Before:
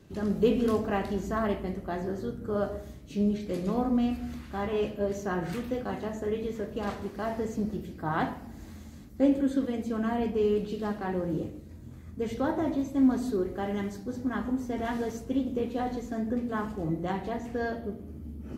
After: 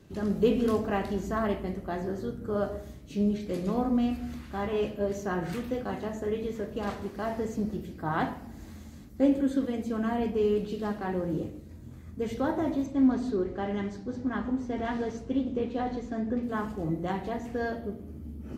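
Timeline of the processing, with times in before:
0:12.86–0:16.43: low-pass filter 5,200 Hz

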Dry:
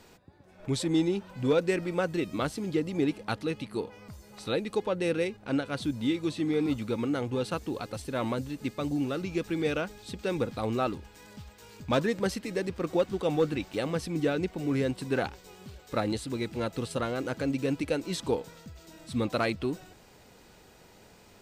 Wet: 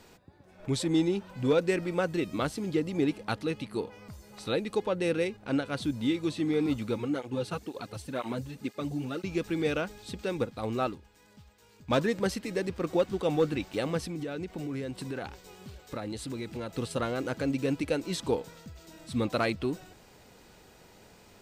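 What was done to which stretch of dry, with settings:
0:06.98–0:09.24: through-zero flanger with one copy inverted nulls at 2 Hz, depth 4.5 ms
0:10.25–0:11.91: expander for the loud parts, over −43 dBFS
0:13.98–0:16.69: downward compressor, threshold −32 dBFS

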